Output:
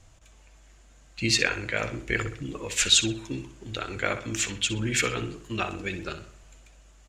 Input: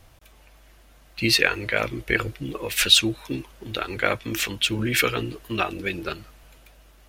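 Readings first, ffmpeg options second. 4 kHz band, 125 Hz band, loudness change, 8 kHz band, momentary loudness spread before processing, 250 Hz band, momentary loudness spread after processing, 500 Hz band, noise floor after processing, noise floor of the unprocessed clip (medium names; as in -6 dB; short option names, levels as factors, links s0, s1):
-4.5 dB, -1.5 dB, -3.5 dB, +2.0 dB, 16 LU, -4.0 dB, 17 LU, -5.0 dB, -55 dBFS, -53 dBFS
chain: -filter_complex "[0:a]lowpass=f=7100:t=q:w=6.2,bass=f=250:g=4,treble=f=4000:g=-10,crystalizer=i=1.5:c=0,asplit=2[s0][s1];[s1]adelay=63,lowpass=f=3600:p=1,volume=0.335,asplit=2[s2][s3];[s3]adelay=63,lowpass=f=3600:p=1,volume=0.46,asplit=2[s4][s5];[s5]adelay=63,lowpass=f=3600:p=1,volume=0.46,asplit=2[s6][s7];[s7]adelay=63,lowpass=f=3600:p=1,volume=0.46,asplit=2[s8][s9];[s9]adelay=63,lowpass=f=3600:p=1,volume=0.46[s10];[s2][s4][s6][s8][s10]amix=inputs=5:normalize=0[s11];[s0][s11]amix=inputs=2:normalize=0,volume=0.501"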